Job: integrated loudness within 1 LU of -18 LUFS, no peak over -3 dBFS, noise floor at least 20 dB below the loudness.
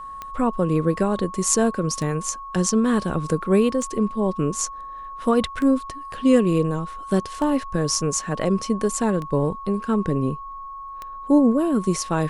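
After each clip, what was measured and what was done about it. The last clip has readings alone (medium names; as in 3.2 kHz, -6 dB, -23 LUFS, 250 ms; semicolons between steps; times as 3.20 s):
clicks found 7; steady tone 1.1 kHz; tone level -33 dBFS; loudness -22.0 LUFS; peak level -3.0 dBFS; loudness target -18.0 LUFS
-> de-click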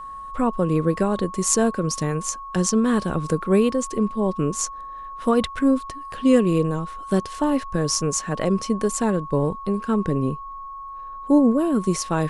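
clicks found 0; steady tone 1.1 kHz; tone level -33 dBFS
-> band-stop 1.1 kHz, Q 30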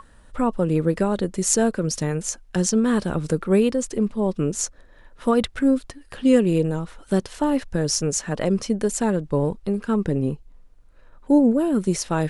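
steady tone not found; loudness -22.5 LUFS; peak level -3.0 dBFS; loudness target -18.0 LUFS
-> trim +4.5 dB; peak limiter -3 dBFS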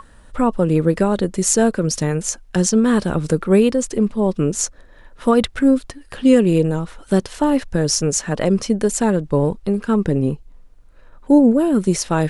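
loudness -18.0 LUFS; peak level -3.0 dBFS; noise floor -46 dBFS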